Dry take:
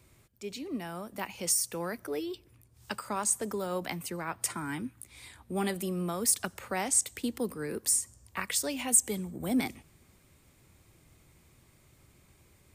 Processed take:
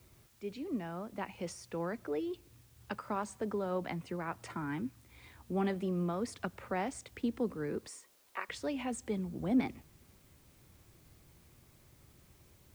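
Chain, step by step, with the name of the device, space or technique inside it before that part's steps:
0:07.87–0:08.49: high-pass filter 370 Hz 24 dB per octave
cassette deck with a dirty head (head-to-tape spacing loss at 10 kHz 29 dB; tape wow and flutter 29 cents; white noise bed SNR 29 dB)

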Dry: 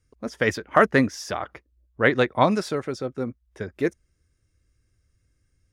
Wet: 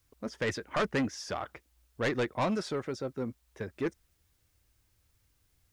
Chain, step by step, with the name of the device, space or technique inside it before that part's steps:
compact cassette (soft clipping −19.5 dBFS, distortion −7 dB; low-pass filter 8,600 Hz; tape wow and flutter; white noise bed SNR 40 dB)
level −5 dB

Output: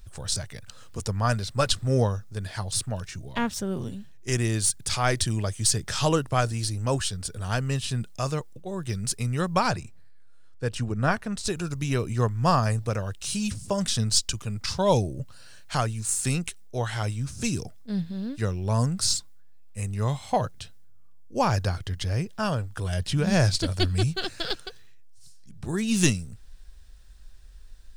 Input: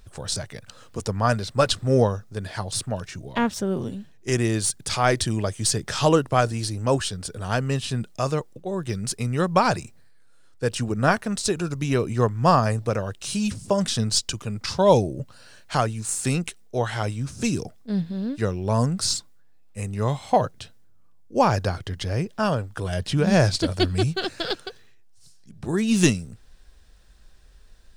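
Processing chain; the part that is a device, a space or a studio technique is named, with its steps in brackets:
0:09.71–0:11.47: high-shelf EQ 4,500 Hz −10 dB
smiley-face EQ (low-shelf EQ 89 Hz +8 dB; parametric band 400 Hz −4.5 dB 2.8 octaves; high-shelf EQ 6,800 Hz +4.5 dB)
level −2 dB

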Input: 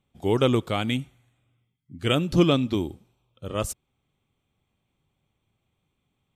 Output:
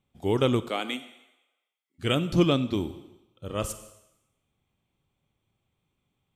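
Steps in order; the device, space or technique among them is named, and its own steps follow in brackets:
compressed reverb return (on a send at −8.5 dB: convolution reverb RT60 0.85 s, pre-delay 25 ms + downward compressor 5 to 1, threshold −26 dBFS, peak gain reduction 9 dB)
0:00.68–0:01.98: on the sum: high-pass filter 240 Hz → 650 Hz 24 dB per octave
level −2.5 dB

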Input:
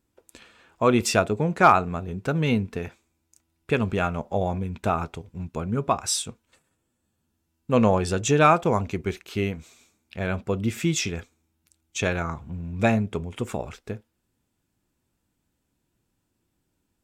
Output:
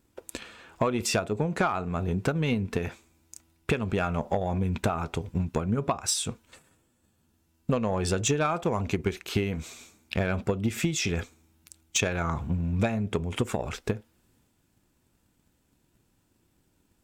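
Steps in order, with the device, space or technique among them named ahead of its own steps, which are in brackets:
drum-bus smash (transient designer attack +8 dB, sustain +4 dB; downward compressor 8 to 1, threshold −27 dBFS, peak gain reduction 20.5 dB; soft clipping −19.5 dBFS, distortion −20 dB)
level +5 dB

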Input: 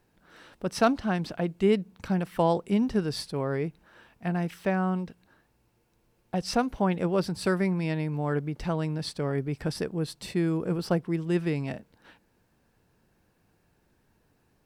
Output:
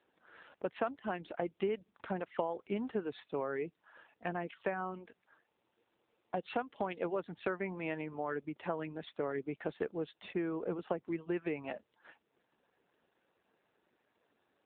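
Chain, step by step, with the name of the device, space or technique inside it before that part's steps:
reverb reduction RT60 0.53 s
0:06.42–0:07.04: dynamic equaliser 3,500 Hz, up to +7 dB, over −50 dBFS, Q 1.3
voicemail (band-pass filter 360–3,200 Hz; downward compressor 10 to 1, threshold −30 dBFS, peak gain reduction 13.5 dB; AMR narrowband 7.4 kbit/s 8,000 Hz)

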